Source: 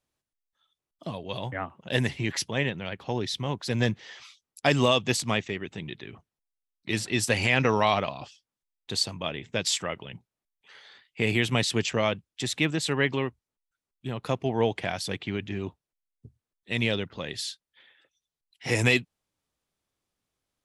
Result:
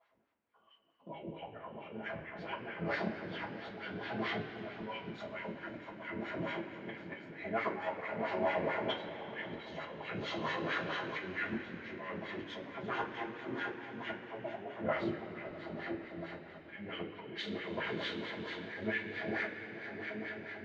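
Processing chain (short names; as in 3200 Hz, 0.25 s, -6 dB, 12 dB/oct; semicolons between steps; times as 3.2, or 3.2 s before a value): delay-line pitch shifter -2.5 st; LPF 4400 Hz 12 dB/oct; high shelf 2700 Hz -10 dB; notches 60/120/180/240/300/360/420/480 Hz; compressor 6:1, threshold -40 dBFS, peak gain reduction 19.5 dB; diffused feedback echo 0.621 s, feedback 56%, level -7 dB; wah 4.5 Hz 240–2100 Hz, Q 2; auto swell 0.619 s; two-slope reverb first 0.21 s, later 4.6 s, from -21 dB, DRR -9 dB; gain +14 dB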